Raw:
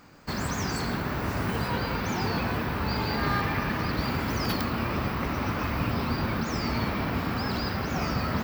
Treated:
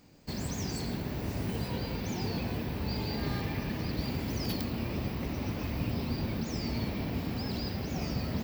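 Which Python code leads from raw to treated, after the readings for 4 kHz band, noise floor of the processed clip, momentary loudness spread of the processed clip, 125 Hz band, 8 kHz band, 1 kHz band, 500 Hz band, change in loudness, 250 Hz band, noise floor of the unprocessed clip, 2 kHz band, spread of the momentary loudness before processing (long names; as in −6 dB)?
−5.0 dB, −38 dBFS, 2 LU, −3.5 dB, −4.0 dB, −12.5 dB, −6.0 dB, −5.5 dB, −4.0 dB, −32 dBFS, −11.5 dB, 2 LU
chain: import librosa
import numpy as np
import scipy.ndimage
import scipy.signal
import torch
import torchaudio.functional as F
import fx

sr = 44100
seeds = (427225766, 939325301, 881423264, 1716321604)

y = fx.peak_eq(x, sr, hz=1300.0, db=-14.5, octaves=1.2)
y = y * librosa.db_to_amplitude(-3.5)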